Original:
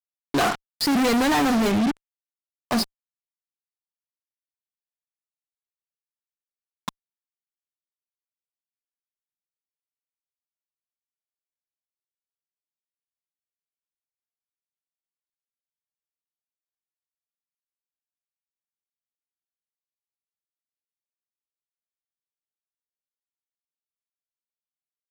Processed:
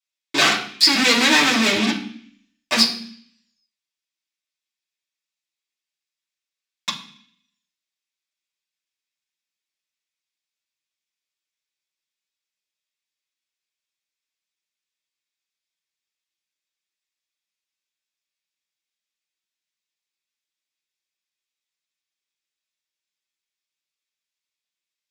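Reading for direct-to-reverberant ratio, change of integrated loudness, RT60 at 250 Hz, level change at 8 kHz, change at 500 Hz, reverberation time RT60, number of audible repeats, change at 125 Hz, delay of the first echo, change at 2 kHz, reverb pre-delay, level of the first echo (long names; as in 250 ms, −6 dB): −6.5 dB, +6.0 dB, 0.80 s, +9.0 dB, −0.5 dB, 0.55 s, no echo audible, −2.5 dB, no echo audible, +10.5 dB, 3 ms, no echo audible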